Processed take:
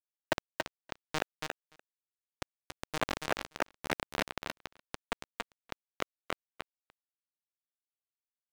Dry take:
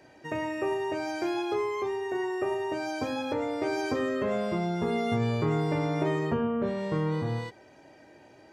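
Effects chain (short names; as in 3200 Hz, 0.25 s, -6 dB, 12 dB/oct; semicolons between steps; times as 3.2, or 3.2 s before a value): compressor 10:1, threshold -36 dBFS, peak gain reduction 13.5 dB; bell 1600 Hz +5.5 dB 0.52 oct; fixed phaser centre 620 Hz, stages 8; resonator 560 Hz, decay 0.24 s, harmonics all, mix 40%; requantised 6-bit, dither none; echo 0.28 s -9.5 dB; overdrive pedal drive 23 dB, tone 2700 Hz, clips at -30 dBFS; echo 0.294 s -24 dB; gain +16 dB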